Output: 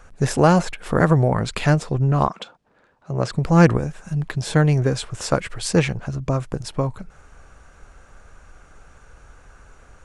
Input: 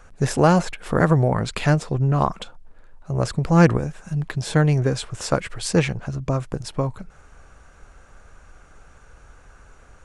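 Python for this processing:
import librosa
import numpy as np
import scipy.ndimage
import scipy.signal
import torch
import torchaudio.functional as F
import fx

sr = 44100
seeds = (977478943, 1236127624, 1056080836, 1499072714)

y = fx.bandpass_edges(x, sr, low_hz=fx.line((2.27, 220.0), (3.31, 110.0)), high_hz=6400.0, at=(2.27, 3.31), fade=0.02)
y = fx.quant_float(y, sr, bits=8, at=(4.41, 6.0))
y = F.gain(torch.from_numpy(y), 1.0).numpy()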